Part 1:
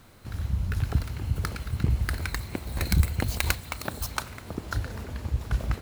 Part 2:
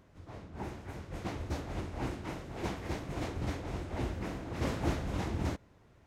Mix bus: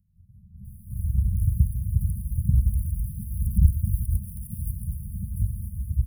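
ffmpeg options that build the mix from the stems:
-filter_complex "[0:a]acrossover=split=6000[s0][s1];[s1]acompressor=threshold=0.00562:ratio=4:attack=1:release=60[s2];[s0][s2]amix=inputs=2:normalize=0,adelay=650,volume=1[s3];[1:a]equalizer=f=9700:w=4.1:g=-7.5,acrossover=split=170[s4][s5];[s5]acompressor=threshold=0.00708:ratio=6[s6];[s4][s6]amix=inputs=2:normalize=0,volume=0.891[s7];[s3][s7]amix=inputs=2:normalize=0,afftfilt=real='re*(1-between(b*sr/4096,220,9200))':imag='im*(1-between(b*sr/4096,220,9200))':win_size=4096:overlap=0.75,equalizer=f=410:w=0.31:g=-7,dynaudnorm=f=220:g=5:m=2.24"

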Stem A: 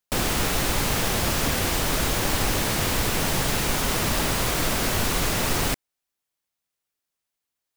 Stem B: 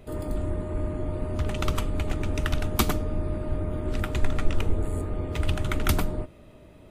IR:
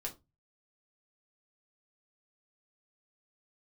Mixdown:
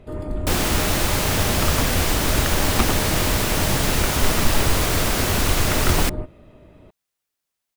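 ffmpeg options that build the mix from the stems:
-filter_complex "[0:a]adelay=350,volume=1.33[s0];[1:a]aemphasis=mode=reproduction:type=50kf,volume=1.33[s1];[s0][s1]amix=inputs=2:normalize=0"

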